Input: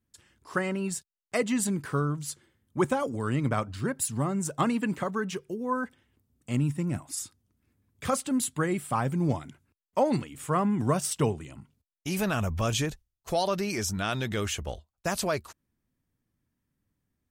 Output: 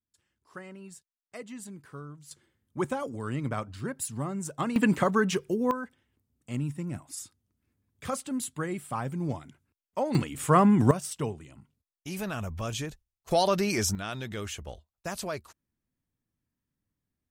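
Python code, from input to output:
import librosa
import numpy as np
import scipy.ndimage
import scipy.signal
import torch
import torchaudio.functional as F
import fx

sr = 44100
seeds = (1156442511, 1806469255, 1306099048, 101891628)

y = fx.gain(x, sr, db=fx.steps((0.0, -15.0), (2.31, -4.5), (4.76, 6.0), (5.71, -5.0), (10.15, 6.0), (10.91, -6.0), (13.31, 3.0), (13.95, -6.0)))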